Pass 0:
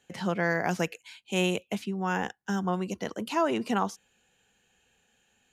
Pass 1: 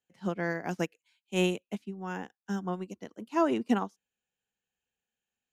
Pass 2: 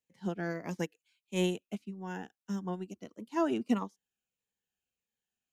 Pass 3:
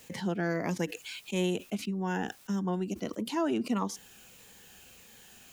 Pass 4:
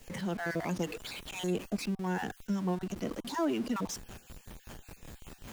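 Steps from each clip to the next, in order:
dynamic equaliser 280 Hz, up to +7 dB, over −44 dBFS, Q 1.4; expander for the loud parts 2.5 to 1, over −35 dBFS
phaser whose notches keep moving one way falling 1.6 Hz; level −2 dB
envelope flattener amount 70%; level −3 dB
time-frequency cells dropped at random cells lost 25%; two-band tremolo in antiphase 5.2 Hz, depth 50%, crossover 840 Hz; in parallel at −9 dB: comparator with hysteresis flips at −49 dBFS

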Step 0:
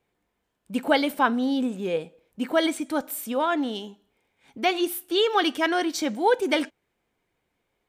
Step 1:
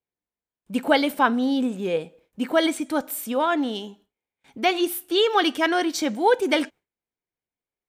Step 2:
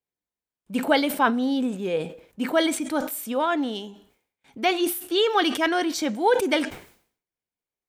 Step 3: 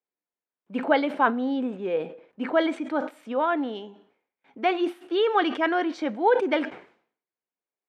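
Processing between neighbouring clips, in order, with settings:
noise gate with hold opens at −50 dBFS; level +2 dB
level that may fall only so fast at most 110 dB per second; level −1.5 dB
band-pass filter 260–2,100 Hz

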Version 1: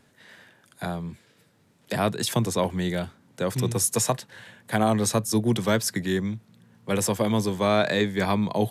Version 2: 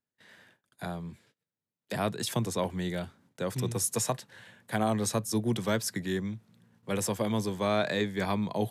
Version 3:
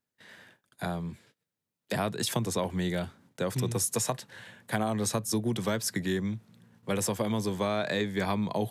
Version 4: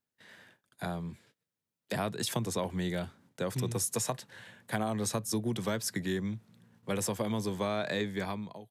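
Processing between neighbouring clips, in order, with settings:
noise gate −55 dBFS, range −27 dB; level −6 dB
downward compressor, threshold −29 dBFS, peak gain reduction 7 dB; level +4 dB
fade-out on the ending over 0.63 s; level −3 dB

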